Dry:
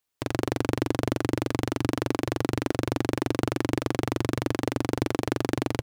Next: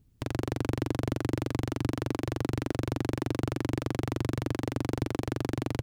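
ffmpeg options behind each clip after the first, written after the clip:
ffmpeg -i in.wav -filter_complex "[0:a]acrossover=split=200[link_01][link_02];[link_01]acompressor=mode=upward:threshold=-34dB:ratio=2.5[link_03];[link_02]alimiter=limit=-17dB:level=0:latency=1:release=364[link_04];[link_03][link_04]amix=inputs=2:normalize=0" out.wav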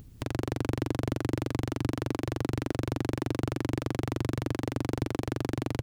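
ffmpeg -i in.wav -af "acompressor=mode=upward:threshold=-37dB:ratio=2.5" out.wav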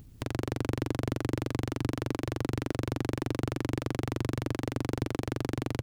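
ffmpeg -i in.wav -af "aeval=exprs='if(lt(val(0),0),0.708*val(0),val(0))':channel_layout=same" out.wav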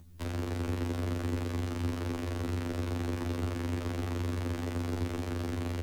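ffmpeg -i in.wav -af "afreqshift=-26,afftfilt=real='re*2*eq(mod(b,4),0)':imag='im*2*eq(mod(b,4),0)':win_size=2048:overlap=0.75" out.wav

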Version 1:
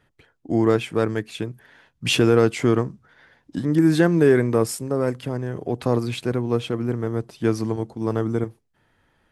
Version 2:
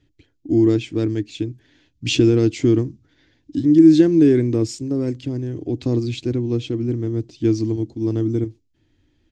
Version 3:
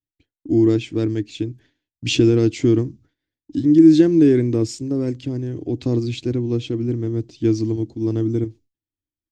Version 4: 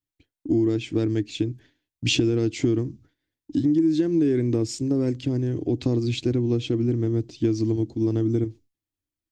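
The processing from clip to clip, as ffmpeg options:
ffmpeg -i in.wav -af "firequalizer=gain_entry='entry(100,0);entry(190,-11);entry(300,5);entry(440,-12);entry(860,-19);entry(1300,-21);entry(2300,-9);entry(4000,-4);entry(7000,-4);entry(10000,-29)':delay=0.05:min_phase=1,volume=5.5dB" out.wav
ffmpeg -i in.wav -af "agate=range=-33dB:threshold=-42dB:ratio=3:detection=peak" out.wav
ffmpeg -i in.wav -af "acompressor=threshold=-20dB:ratio=6,volume=1.5dB" out.wav

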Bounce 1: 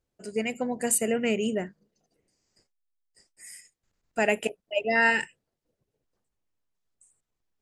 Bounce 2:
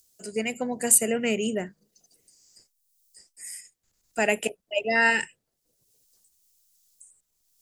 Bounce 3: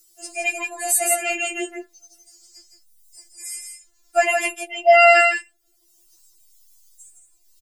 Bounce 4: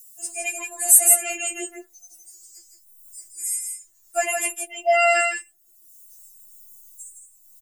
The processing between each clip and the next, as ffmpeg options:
ffmpeg -i in.wav -filter_complex "[0:a]highshelf=frequency=4600:gain=8.5,acrossover=split=150|740|4300[link_01][link_02][link_03][link_04];[link_04]acompressor=mode=upward:threshold=-47dB:ratio=2.5[link_05];[link_01][link_02][link_03][link_05]amix=inputs=4:normalize=0" out.wav
ffmpeg -i in.wav -af "aecho=1:1:163:0.531,alimiter=level_in=12dB:limit=-1dB:release=50:level=0:latency=1,afftfilt=real='re*4*eq(mod(b,16),0)':imag='im*4*eq(mod(b,16),0)':win_size=2048:overlap=0.75,volume=-2.5dB" out.wav
ffmpeg -i in.wav -af "aexciter=amount=6.1:drive=2.3:freq=6600,volume=-6dB" out.wav

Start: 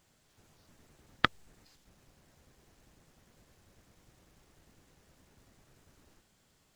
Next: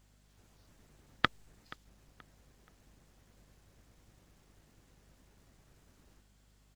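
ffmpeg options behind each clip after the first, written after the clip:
ffmpeg -i in.wav -filter_complex "[0:a]aeval=exprs='val(0)+0.000631*(sin(2*PI*50*n/s)+sin(2*PI*2*50*n/s)/2+sin(2*PI*3*50*n/s)/3+sin(2*PI*4*50*n/s)/4+sin(2*PI*5*50*n/s)/5)':channel_layout=same,asplit=2[link_01][link_02];[link_02]adelay=478,lowpass=frequency=4200:poles=1,volume=-20dB,asplit=2[link_03][link_04];[link_04]adelay=478,lowpass=frequency=4200:poles=1,volume=0.36,asplit=2[link_05][link_06];[link_06]adelay=478,lowpass=frequency=4200:poles=1,volume=0.36[link_07];[link_01][link_03][link_05][link_07]amix=inputs=4:normalize=0,volume=-2dB" out.wav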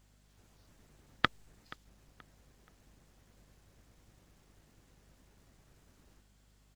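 ffmpeg -i in.wav -af anull out.wav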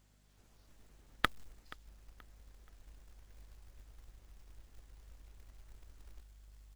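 ffmpeg -i in.wav -af "asubboost=boost=10.5:cutoff=52,acrusher=bits=4:mode=log:mix=0:aa=0.000001,volume=-2.5dB" out.wav

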